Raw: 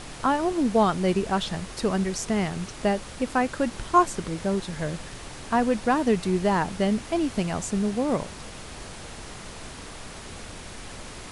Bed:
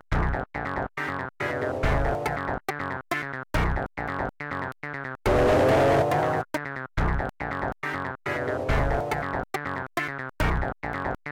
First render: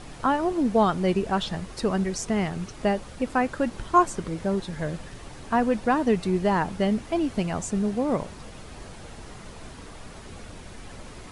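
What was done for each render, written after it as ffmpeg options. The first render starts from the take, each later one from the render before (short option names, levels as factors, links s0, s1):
-af "afftdn=nr=7:nf=-41"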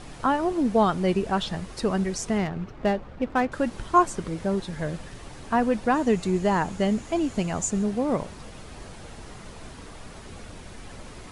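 -filter_complex "[0:a]asettb=1/sr,asplit=3[s0][s1][s2];[s0]atrim=end=2.384[s3];[s1]atrim=start=2.38:end=3.52,asetpts=PTS-STARTPTS,afade=t=in:d=0.004:c=qsin,afade=t=out:st=1.136:d=0.004:c=qsin,adynamicsmooth=sensitivity=4.5:basefreq=1800[s4];[s2]atrim=start=3.516[s5];[s3][s4]acrossfade=d=0.004:c1=hsin:c2=qsin[s6];[s6][s5]acrossfade=d=0.004:c1=qsin:c2=hsin,asettb=1/sr,asplit=3[s7][s8][s9];[s7]atrim=end=5.944[s10];[s8]atrim=start=5.94:end=7.84,asetpts=PTS-STARTPTS,afade=t=in:d=0.004:c=qsin,afade=t=out:st=1.896:d=0.004:c=qsin,equalizer=f=6900:t=o:w=0.21:g=10.5[s11];[s9]atrim=start=7.836[s12];[s10][s11]acrossfade=d=0.004:c1=hsin:c2=qsin[s13];[s13][s12]acrossfade=d=0.004:c1=qsin:c2=hsin"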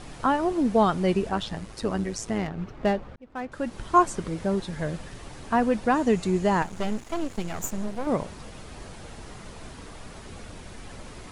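-filter_complex "[0:a]asettb=1/sr,asplit=3[s0][s1][s2];[s0]atrim=end=1.294[s3];[s1]atrim=start=1.29:end=2.58,asetpts=PTS-STARTPTS,afade=t=in:d=0.004:c=qsin,afade=t=out:st=1.286:d=0.004:c=qsin,tremolo=f=110:d=0.621[s4];[s2]atrim=start=2.576[s5];[s3][s4]acrossfade=d=0.004:c1=hsin:c2=qsin[s6];[s6][s5]acrossfade=d=0.004:c1=qsin:c2=hsin,asettb=1/sr,asplit=3[s7][s8][s9];[s7]atrim=end=6.624[s10];[s8]atrim=start=6.62:end=8.07,asetpts=PTS-STARTPTS,afade=t=in:d=0.004:c=qsin,afade=t=out:st=1.446:d=0.004:c=qsin,aeval=exprs='max(val(0),0)':c=same[s11];[s9]atrim=start=8.066[s12];[s10][s11]acrossfade=d=0.004:c1=hsin:c2=qsin[s13];[s13][s12]acrossfade=d=0.004:c1=qsin:c2=hsin,asplit=2[s14][s15];[s14]atrim=end=3.16,asetpts=PTS-STARTPTS,afade=t=out:st=3.156:d=0.004:c=hsin[s16];[s15]atrim=start=3.16,asetpts=PTS-STARTPTS,afade=t=in:d=0.79[s17];[s16][s17]concat=n=2:v=0:a=1"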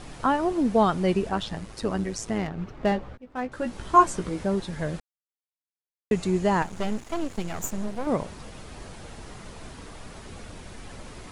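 -filter_complex "[0:a]asettb=1/sr,asplit=3[s0][s1][s2];[s0]atrim=end=2.904[s3];[s1]atrim=start=2.9:end=4.43,asetpts=PTS-STARTPTS,afade=t=in:d=0.004:c=qsin,afade=t=out:st=1.526:d=0.004:c=qsin,asplit=2[s4][s5];[s5]adelay=16,volume=0.562[s6];[s4][s6]amix=inputs=2:normalize=0,atrim=end_sample=67473[s7];[s2]atrim=start=4.426[s8];[s3][s7]acrossfade=d=0.004:c1=hsin:c2=qsin[s9];[s9][s8]acrossfade=d=0.004:c1=qsin:c2=hsin,asplit=3[s10][s11][s12];[s10]atrim=end=5,asetpts=PTS-STARTPTS,afade=t=out:st=4.996:d=0.004:c=hsin[s13];[s11]atrim=start=5:end=6.11,asetpts=PTS-STARTPTS,volume=0[s14];[s12]atrim=start=6.11,asetpts=PTS-STARTPTS,afade=t=in:d=0.004:c=hsin[s15];[s13][s14][s15]concat=n=3:v=0:a=1"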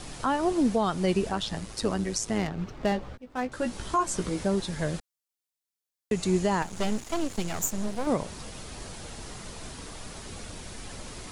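-filter_complex "[0:a]acrossover=split=410|3600[s0][s1][s2];[s2]acontrast=84[s3];[s0][s1][s3]amix=inputs=3:normalize=0,alimiter=limit=0.178:level=0:latency=1:release=206"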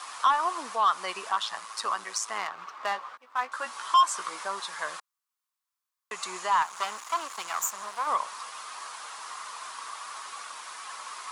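-af "highpass=f=1100:t=q:w=5.4,asoftclip=type=tanh:threshold=0.168"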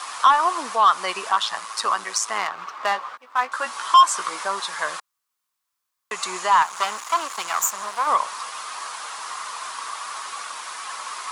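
-af "volume=2.37"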